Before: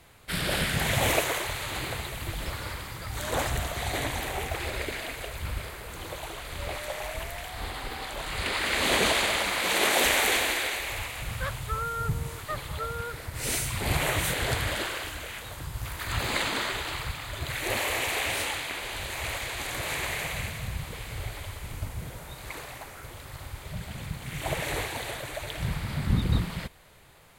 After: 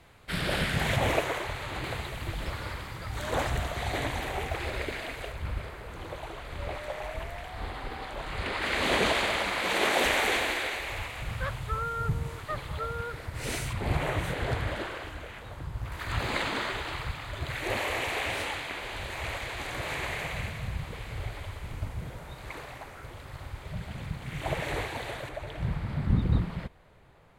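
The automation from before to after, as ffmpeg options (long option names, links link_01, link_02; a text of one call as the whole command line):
ffmpeg -i in.wav -af "asetnsamples=nb_out_samples=441:pad=0,asendcmd='0.96 lowpass f 1900;1.84 lowpass f 3300;5.32 lowpass f 1700;8.62 lowpass f 2800;13.73 lowpass f 1200;15.92 lowpass f 2600;25.29 lowpass f 1100',lowpass=frequency=3500:poles=1" out.wav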